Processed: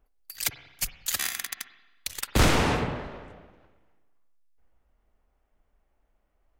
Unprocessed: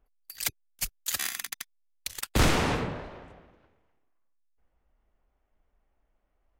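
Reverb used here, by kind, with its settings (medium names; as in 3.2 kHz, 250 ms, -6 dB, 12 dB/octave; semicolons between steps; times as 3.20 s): spring tank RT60 1.1 s, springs 45/53/60 ms, chirp 50 ms, DRR 11 dB; trim +2 dB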